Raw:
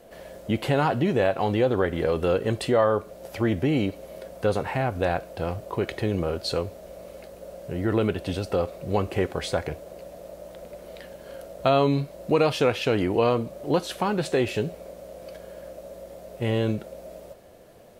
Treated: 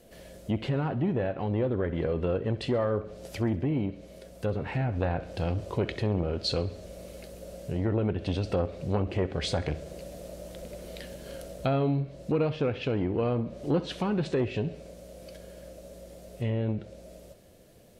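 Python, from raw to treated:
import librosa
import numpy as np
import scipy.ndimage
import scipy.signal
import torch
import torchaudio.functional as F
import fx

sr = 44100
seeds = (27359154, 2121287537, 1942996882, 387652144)

p1 = fx.env_lowpass_down(x, sr, base_hz=1800.0, full_db=-20.0)
p2 = fx.peak_eq(p1, sr, hz=920.0, db=-11.0, octaves=2.3)
p3 = fx.rider(p2, sr, range_db=4, speed_s=0.5)
p4 = p3 + fx.echo_feedback(p3, sr, ms=66, feedback_pct=54, wet_db=-18.0, dry=0)
p5 = fx.transformer_sat(p4, sr, knee_hz=390.0)
y = p5 * 10.0 ** (2.0 / 20.0)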